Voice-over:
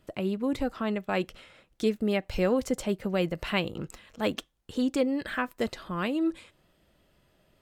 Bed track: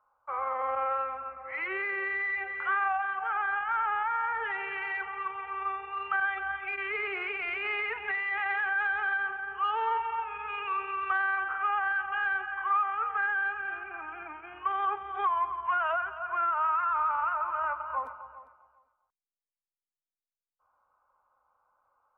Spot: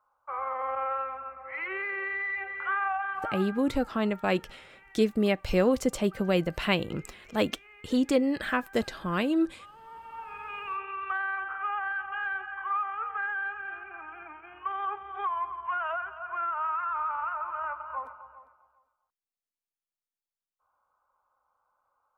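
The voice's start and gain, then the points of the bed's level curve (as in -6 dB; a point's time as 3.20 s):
3.15 s, +2.0 dB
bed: 3.25 s -1 dB
3.70 s -22 dB
9.81 s -22 dB
10.34 s -3 dB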